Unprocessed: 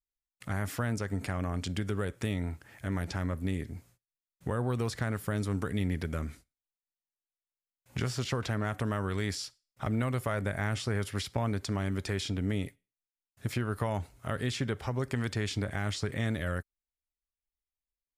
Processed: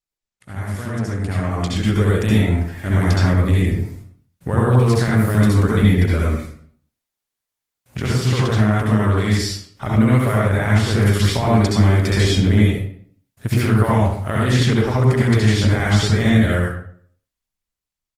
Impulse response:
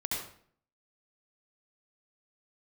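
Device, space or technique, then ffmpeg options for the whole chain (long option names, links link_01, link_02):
speakerphone in a meeting room: -filter_complex "[1:a]atrim=start_sample=2205[link_01];[0:a][link_01]afir=irnorm=-1:irlink=0,asplit=2[link_02][link_03];[link_03]adelay=100,highpass=300,lowpass=3400,asoftclip=type=hard:threshold=-20.5dB,volume=-17dB[link_04];[link_02][link_04]amix=inputs=2:normalize=0,dynaudnorm=framelen=290:gausssize=11:maxgain=13dB" -ar 48000 -c:a libopus -b:a 20k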